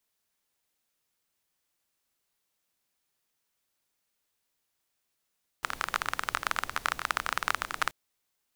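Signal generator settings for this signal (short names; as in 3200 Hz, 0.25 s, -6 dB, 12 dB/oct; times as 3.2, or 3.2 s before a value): rain from filtered ticks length 2.28 s, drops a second 22, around 1300 Hz, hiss -15 dB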